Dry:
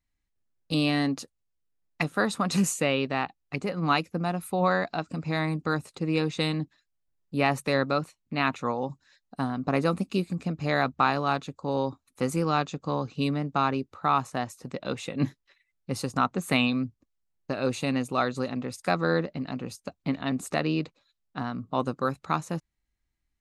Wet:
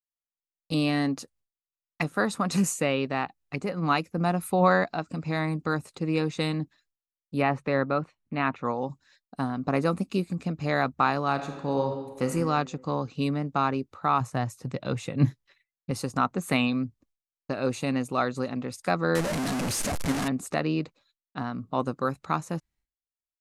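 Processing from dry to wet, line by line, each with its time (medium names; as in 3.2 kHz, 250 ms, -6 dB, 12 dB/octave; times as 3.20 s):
4.18–4.84 s: gain +3.5 dB
7.42–8.65 s: low-pass 2.7 kHz
11.32–12.31 s: reverb throw, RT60 1.3 s, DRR 4 dB
14.20–15.91 s: peaking EQ 120 Hz +10.5 dB
19.15–20.28 s: one-bit delta coder 64 kbps, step -22 dBFS
whole clip: expander -59 dBFS; dynamic bell 3.4 kHz, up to -4 dB, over -46 dBFS, Q 1.5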